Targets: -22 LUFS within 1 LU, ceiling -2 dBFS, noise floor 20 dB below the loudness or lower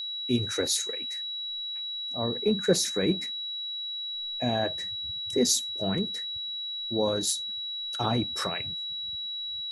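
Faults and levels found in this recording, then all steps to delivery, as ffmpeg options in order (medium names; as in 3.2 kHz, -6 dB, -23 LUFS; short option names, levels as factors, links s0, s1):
steady tone 3.9 kHz; tone level -32 dBFS; loudness -28.5 LUFS; peak level -10.5 dBFS; loudness target -22.0 LUFS
-> -af "bandreject=f=3900:w=30"
-af "volume=2.11"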